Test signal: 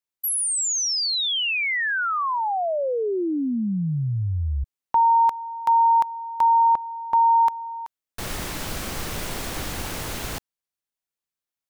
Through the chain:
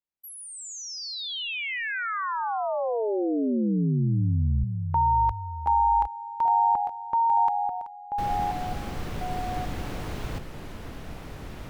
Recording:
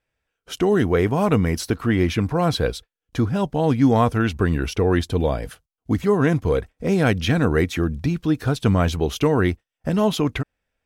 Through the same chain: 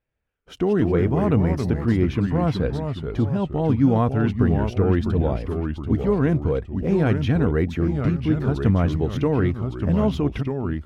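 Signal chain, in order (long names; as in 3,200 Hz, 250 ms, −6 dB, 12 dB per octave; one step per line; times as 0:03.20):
drawn EQ curve 160 Hz 0 dB, 3,000 Hz −9 dB, 9,300 Hz −18 dB
delay with pitch and tempo change per echo 112 ms, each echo −2 semitones, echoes 2, each echo −6 dB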